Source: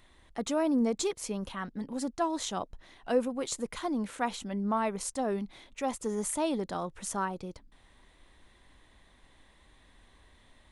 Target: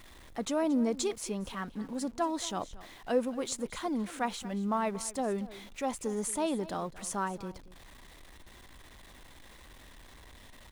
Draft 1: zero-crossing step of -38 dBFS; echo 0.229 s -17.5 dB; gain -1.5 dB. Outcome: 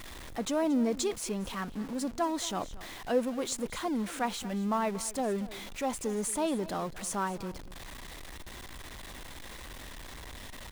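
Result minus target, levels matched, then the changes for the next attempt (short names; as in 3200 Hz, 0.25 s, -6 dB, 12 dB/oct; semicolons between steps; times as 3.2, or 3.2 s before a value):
zero-crossing step: distortion +10 dB
change: zero-crossing step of -48.5 dBFS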